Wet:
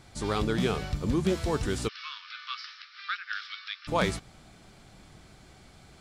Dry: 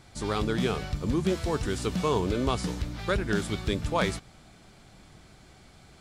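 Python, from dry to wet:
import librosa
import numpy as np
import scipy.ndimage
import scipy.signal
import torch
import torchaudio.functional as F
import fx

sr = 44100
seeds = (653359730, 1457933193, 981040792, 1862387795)

y = fx.cheby1_bandpass(x, sr, low_hz=1200.0, high_hz=5400.0, order=5, at=(1.87, 3.87), fade=0.02)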